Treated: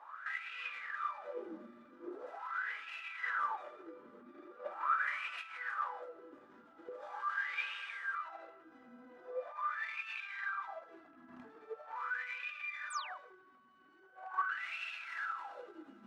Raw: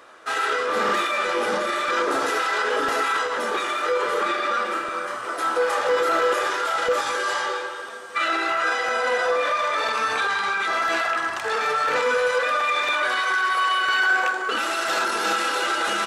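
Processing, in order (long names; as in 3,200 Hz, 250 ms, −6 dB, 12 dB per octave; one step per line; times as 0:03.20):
stylus tracing distortion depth 0.08 ms
parametric band 460 Hz −10 dB 1.1 octaves
compressor whose output falls as the input rises −32 dBFS, ratio −1
LFO wah 0.42 Hz 240–2,600 Hz, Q 11
sound drawn into the spectrogram fall, 0:12.90–0:13.18, 910–9,600 Hz −51 dBFS
level +3 dB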